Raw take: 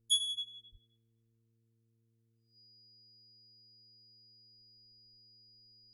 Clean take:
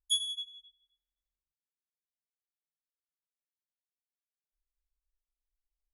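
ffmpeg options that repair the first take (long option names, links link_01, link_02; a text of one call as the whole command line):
ffmpeg -i in.wav -filter_complex "[0:a]bandreject=frequency=113.7:width_type=h:width=4,bandreject=frequency=227.4:width_type=h:width=4,bandreject=frequency=341.1:width_type=h:width=4,bandreject=frequency=454.8:width_type=h:width=4,bandreject=frequency=4900:width=30,asplit=3[link_01][link_02][link_03];[link_01]afade=type=out:start_time=0.71:duration=0.02[link_04];[link_02]highpass=frequency=140:width=0.5412,highpass=frequency=140:width=1.3066,afade=type=in:start_time=0.71:duration=0.02,afade=type=out:start_time=0.83:duration=0.02[link_05];[link_03]afade=type=in:start_time=0.83:duration=0.02[link_06];[link_04][link_05][link_06]amix=inputs=3:normalize=0" out.wav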